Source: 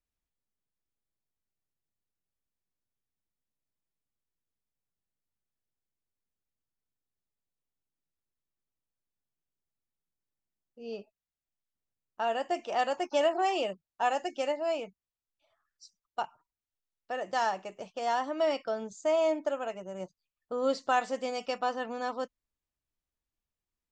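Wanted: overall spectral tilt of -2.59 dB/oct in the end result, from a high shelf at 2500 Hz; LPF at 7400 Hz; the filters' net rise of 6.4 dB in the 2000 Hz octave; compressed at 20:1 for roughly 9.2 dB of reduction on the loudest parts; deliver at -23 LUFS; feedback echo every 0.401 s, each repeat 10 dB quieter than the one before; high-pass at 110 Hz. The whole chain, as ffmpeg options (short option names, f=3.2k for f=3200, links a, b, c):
-af "highpass=110,lowpass=7.4k,equalizer=f=2k:t=o:g=5.5,highshelf=f=2.5k:g=6,acompressor=threshold=-29dB:ratio=20,aecho=1:1:401|802|1203|1604:0.316|0.101|0.0324|0.0104,volume=12.5dB"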